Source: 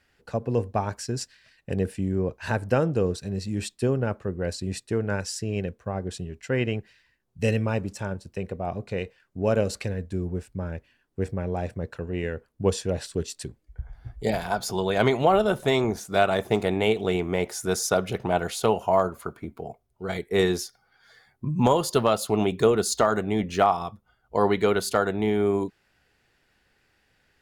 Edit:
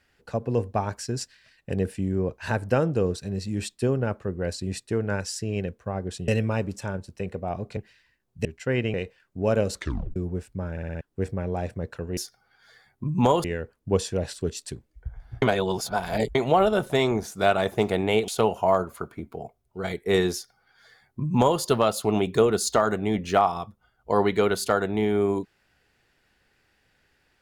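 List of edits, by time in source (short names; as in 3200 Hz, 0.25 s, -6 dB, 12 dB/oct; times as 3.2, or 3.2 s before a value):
6.28–6.77 swap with 7.45–8.94
9.75 tape stop 0.41 s
10.71 stutter in place 0.06 s, 5 plays
14.15–15.08 reverse
17.01–18.53 cut
20.58–21.85 copy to 12.17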